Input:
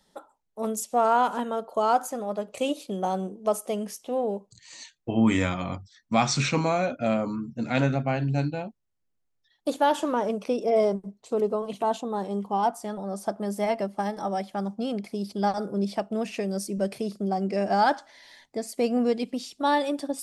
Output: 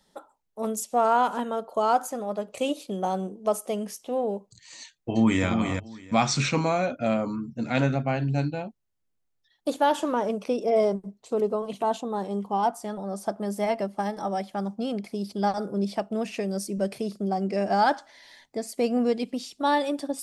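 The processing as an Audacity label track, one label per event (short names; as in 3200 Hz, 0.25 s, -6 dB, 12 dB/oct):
4.810000	5.450000	echo throw 0.34 s, feedback 15%, level -6 dB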